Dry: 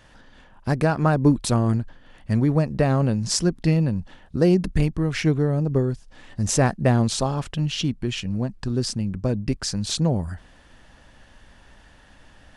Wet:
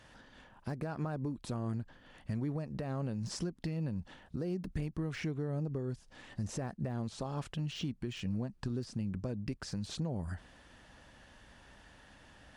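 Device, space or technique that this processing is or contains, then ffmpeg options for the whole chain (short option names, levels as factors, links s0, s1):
podcast mastering chain: -af "highpass=f=61:p=1,deesser=0.95,acompressor=threshold=0.0501:ratio=4,alimiter=limit=0.0794:level=0:latency=1:release=211,volume=0.596" -ar 48000 -c:a libmp3lame -b:a 96k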